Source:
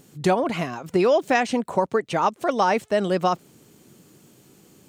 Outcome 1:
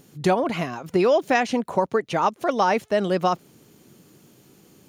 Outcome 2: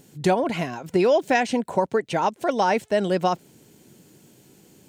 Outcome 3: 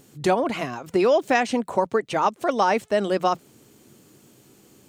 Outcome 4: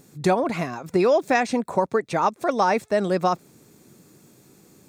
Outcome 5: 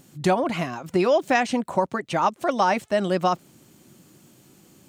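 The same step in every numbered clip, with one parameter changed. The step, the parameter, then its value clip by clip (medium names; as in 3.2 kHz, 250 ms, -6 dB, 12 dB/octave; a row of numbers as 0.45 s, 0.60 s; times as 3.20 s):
band-stop, frequency: 8 kHz, 1.2 kHz, 170 Hz, 3 kHz, 440 Hz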